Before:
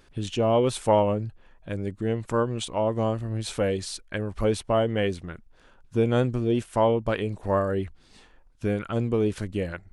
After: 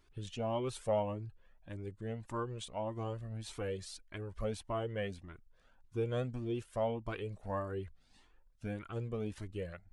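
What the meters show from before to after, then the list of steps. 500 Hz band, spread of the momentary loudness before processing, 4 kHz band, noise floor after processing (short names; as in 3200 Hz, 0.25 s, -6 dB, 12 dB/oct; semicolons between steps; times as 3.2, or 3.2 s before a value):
-13.5 dB, 11 LU, -13.0 dB, -67 dBFS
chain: cascading flanger rising 1.7 Hz; gain -8.5 dB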